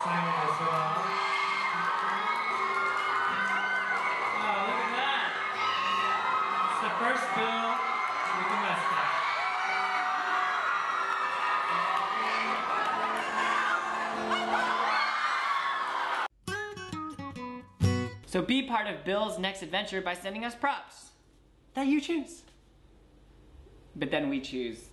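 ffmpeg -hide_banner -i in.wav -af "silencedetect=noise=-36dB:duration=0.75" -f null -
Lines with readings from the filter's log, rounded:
silence_start: 20.81
silence_end: 21.77 | silence_duration: 0.96
silence_start: 22.31
silence_end: 23.96 | silence_duration: 1.65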